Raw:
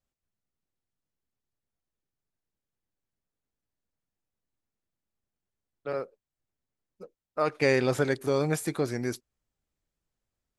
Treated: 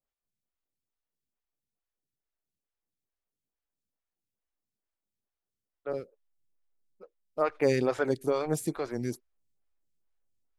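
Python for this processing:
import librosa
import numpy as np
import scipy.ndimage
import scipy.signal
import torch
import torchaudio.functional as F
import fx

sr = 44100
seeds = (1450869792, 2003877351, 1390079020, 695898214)

p1 = fx.backlash(x, sr, play_db=-28.5)
p2 = x + (p1 * 10.0 ** (-6.0 / 20.0))
p3 = fx.stagger_phaser(p2, sr, hz=2.3)
y = p3 * 10.0 ** (-2.5 / 20.0)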